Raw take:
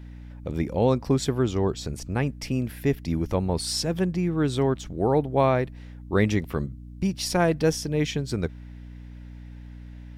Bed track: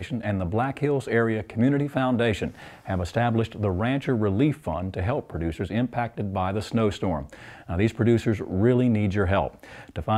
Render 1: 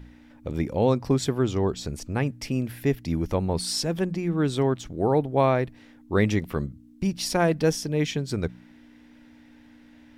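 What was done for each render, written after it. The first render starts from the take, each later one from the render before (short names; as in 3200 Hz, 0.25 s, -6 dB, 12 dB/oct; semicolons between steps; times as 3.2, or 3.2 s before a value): de-hum 60 Hz, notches 3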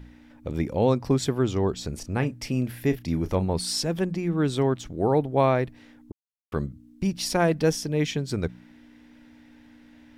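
1.89–3.45 doubler 32 ms -12 dB; 6.12–6.52 mute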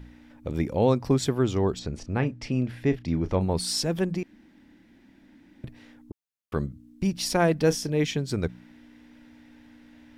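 1.79–3.41 air absorption 99 m; 4.23–5.64 room tone; 7.64–8.04 doubler 29 ms -13.5 dB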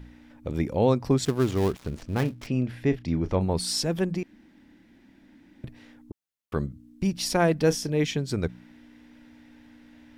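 1.25–2.47 switching dead time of 0.16 ms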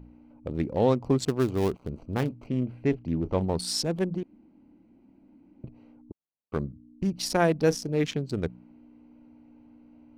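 Wiener smoothing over 25 samples; low shelf 130 Hz -5.5 dB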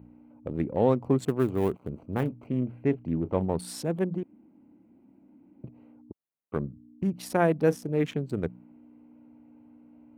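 HPF 90 Hz; bell 5100 Hz -14.5 dB 1.2 oct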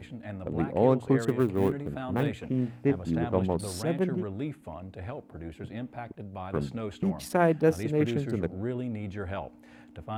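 add bed track -12.5 dB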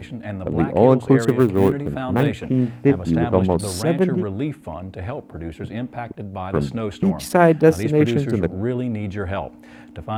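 gain +9.5 dB; limiter -2 dBFS, peak gain reduction 1.5 dB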